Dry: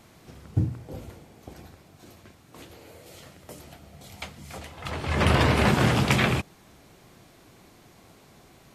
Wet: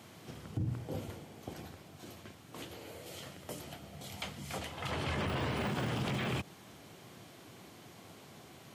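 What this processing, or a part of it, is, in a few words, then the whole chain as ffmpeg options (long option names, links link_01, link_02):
broadcast voice chain: -af "highpass=frequency=85:width=0.5412,highpass=frequency=85:width=1.3066,deesser=0.8,acompressor=threshold=-24dB:ratio=6,equalizer=frequency=3100:width_type=o:width=0.2:gain=5,alimiter=level_in=2.5dB:limit=-24dB:level=0:latency=1:release=57,volume=-2.5dB"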